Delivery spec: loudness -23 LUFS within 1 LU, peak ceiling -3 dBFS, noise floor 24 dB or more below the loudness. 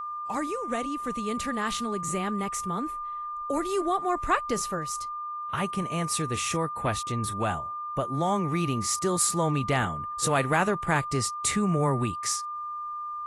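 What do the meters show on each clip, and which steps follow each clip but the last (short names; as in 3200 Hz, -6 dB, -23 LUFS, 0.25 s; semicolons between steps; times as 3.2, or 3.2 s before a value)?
steady tone 1200 Hz; tone level -32 dBFS; loudness -28.0 LUFS; peak -10.0 dBFS; loudness target -23.0 LUFS
-> notch 1200 Hz, Q 30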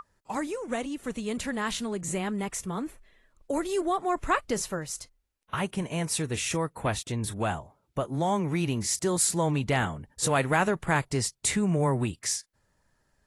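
steady tone none; loudness -29.0 LUFS; peak -10.5 dBFS; loudness target -23.0 LUFS
-> gain +6 dB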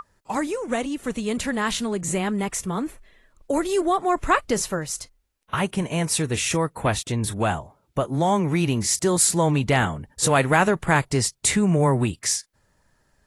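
loudness -23.0 LUFS; peak -4.5 dBFS; noise floor -67 dBFS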